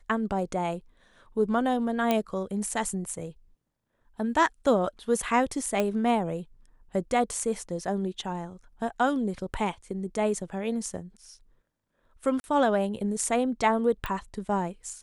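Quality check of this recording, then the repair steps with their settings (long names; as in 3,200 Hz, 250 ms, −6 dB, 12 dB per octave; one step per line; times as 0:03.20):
0:02.11: click −11 dBFS
0:05.80: click −13 dBFS
0:12.40–0:12.44: drop-out 40 ms
0:14.06: click −18 dBFS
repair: click removal
repair the gap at 0:12.40, 40 ms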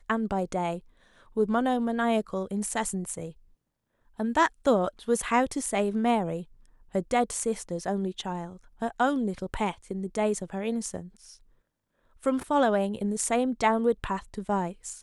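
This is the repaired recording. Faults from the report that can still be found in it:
none of them is left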